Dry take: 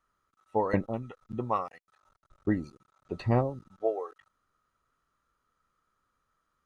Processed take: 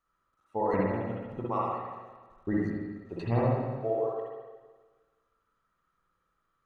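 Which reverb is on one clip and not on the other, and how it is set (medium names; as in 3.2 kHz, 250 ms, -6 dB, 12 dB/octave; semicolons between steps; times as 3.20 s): spring tank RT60 1.4 s, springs 52/58 ms, chirp 30 ms, DRR -5 dB; trim -5.5 dB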